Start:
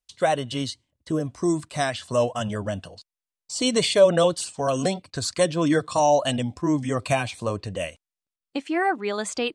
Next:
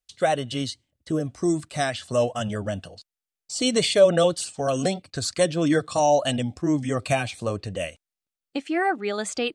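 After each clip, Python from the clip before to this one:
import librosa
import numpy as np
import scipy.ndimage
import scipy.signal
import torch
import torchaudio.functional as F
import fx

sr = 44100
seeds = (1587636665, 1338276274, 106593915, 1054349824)

y = fx.notch(x, sr, hz=1000.0, q=5.2)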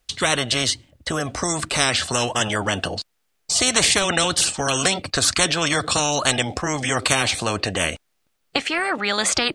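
y = fx.high_shelf(x, sr, hz=3700.0, db=-8.0)
y = fx.spectral_comp(y, sr, ratio=4.0)
y = y * 10.0 ** (5.5 / 20.0)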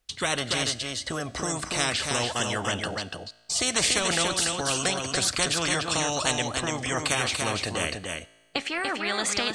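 y = fx.comb_fb(x, sr, f0_hz=56.0, decay_s=1.4, harmonics='all', damping=0.0, mix_pct=40)
y = y + 10.0 ** (-4.5 / 20.0) * np.pad(y, (int(289 * sr / 1000.0), 0))[:len(y)]
y = y * 10.0 ** (-3.0 / 20.0)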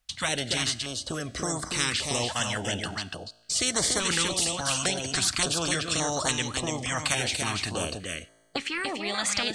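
y = fx.filter_held_notch(x, sr, hz=3.5, low_hz=390.0, high_hz=2600.0)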